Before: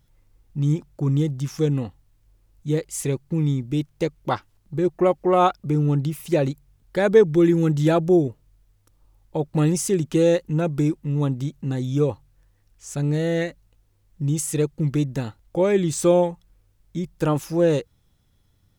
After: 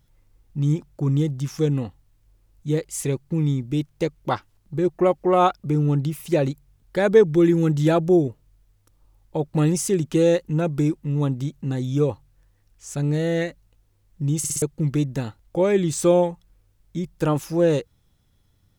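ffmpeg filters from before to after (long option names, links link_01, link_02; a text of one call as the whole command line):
ffmpeg -i in.wav -filter_complex "[0:a]asplit=5[link_01][link_02][link_03][link_04][link_05];[link_01]atrim=end=14.442[link_06];[link_02]atrim=start=14.378:end=14.442[link_07];[link_03]atrim=start=14.378:end=14.442[link_08];[link_04]atrim=start=14.378:end=14.442[link_09];[link_05]atrim=start=14.618[link_10];[link_06][link_07]acrossfade=duration=0.004:curve1=hsin:curve2=hsin[link_11];[link_11][link_08]acrossfade=duration=0.004:curve1=hsin:curve2=hsin[link_12];[link_12][link_09]acrossfade=duration=0.004:curve1=hsin:curve2=hsin[link_13];[link_13][link_10]acrossfade=duration=0.004:curve1=hsin:curve2=hsin" out.wav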